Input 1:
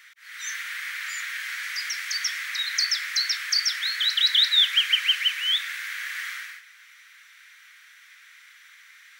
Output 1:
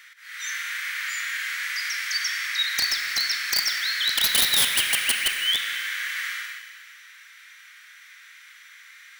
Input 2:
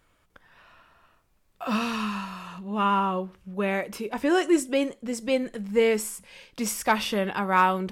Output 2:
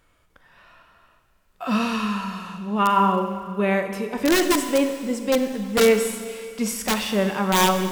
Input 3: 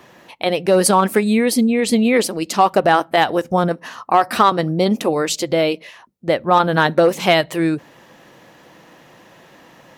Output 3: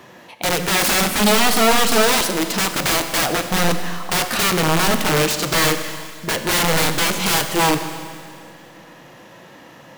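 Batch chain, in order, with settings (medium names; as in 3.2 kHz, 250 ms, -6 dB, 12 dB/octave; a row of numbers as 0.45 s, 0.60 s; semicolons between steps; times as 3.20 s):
integer overflow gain 14.5 dB; harmonic-percussive split harmonic +7 dB; Schroeder reverb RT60 2.1 s, combs from 31 ms, DRR 8 dB; trim -2 dB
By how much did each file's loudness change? 0.0 LU, +4.0 LU, -0.5 LU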